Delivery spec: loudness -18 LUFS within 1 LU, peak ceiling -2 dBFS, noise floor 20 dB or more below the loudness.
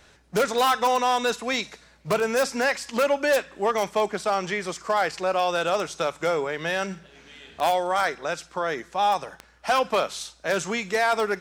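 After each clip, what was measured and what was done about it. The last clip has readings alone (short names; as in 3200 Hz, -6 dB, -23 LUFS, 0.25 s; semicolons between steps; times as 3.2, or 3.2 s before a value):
clicks 7; loudness -25.0 LUFS; peak -12.0 dBFS; loudness target -18.0 LUFS
-> de-click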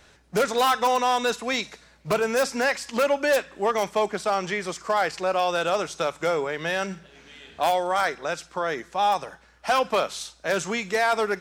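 clicks 0; loudness -25.0 LUFS; peak -12.0 dBFS; loudness target -18.0 LUFS
-> gain +7 dB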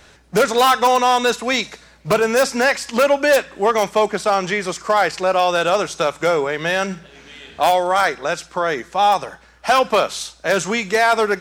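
loudness -18.0 LUFS; peak -5.0 dBFS; noise floor -49 dBFS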